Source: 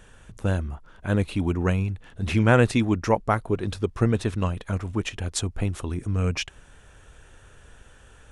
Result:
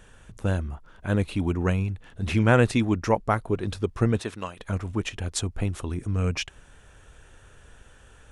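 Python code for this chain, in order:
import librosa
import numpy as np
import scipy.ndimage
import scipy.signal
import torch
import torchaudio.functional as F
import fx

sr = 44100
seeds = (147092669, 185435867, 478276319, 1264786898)

y = fx.highpass(x, sr, hz=fx.line((4.18, 310.0), (4.58, 1000.0)), slope=6, at=(4.18, 4.58), fade=0.02)
y = F.gain(torch.from_numpy(y), -1.0).numpy()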